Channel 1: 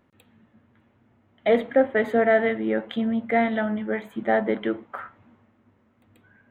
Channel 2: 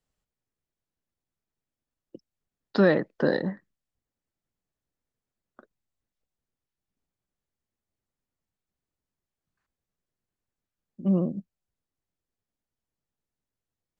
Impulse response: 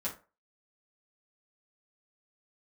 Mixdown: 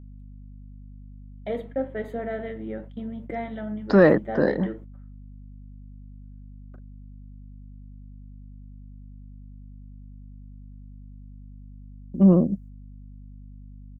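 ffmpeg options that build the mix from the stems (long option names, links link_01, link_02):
-filter_complex "[0:a]equalizer=frequency=1600:width_type=o:width=2.7:gain=-9,volume=-14dB,asplit=3[link_01][link_02][link_03];[link_02]volume=-9dB[link_04];[1:a]equalizer=frequency=3500:width=1.7:gain=-13,adelay=1150,volume=2.5dB[link_05];[link_03]apad=whole_len=667725[link_06];[link_05][link_06]sidechaincompress=threshold=-40dB:ratio=8:attack=7.4:release=390[link_07];[2:a]atrim=start_sample=2205[link_08];[link_04][link_08]afir=irnorm=-1:irlink=0[link_09];[link_01][link_07][link_09]amix=inputs=3:normalize=0,agate=range=-23dB:threshold=-48dB:ratio=16:detection=peak,acontrast=48,aeval=exprs='val(0)+0.00794*(sin(2*PI*50*n/s)+sin(2*PI*2*50*n/s)/2+sin(2*PI*3*50*n/s)/3+sin(2*PI*4*50*n/s)/4+sin(2*PI*5*50*n/s)/5)':channel_layout=same"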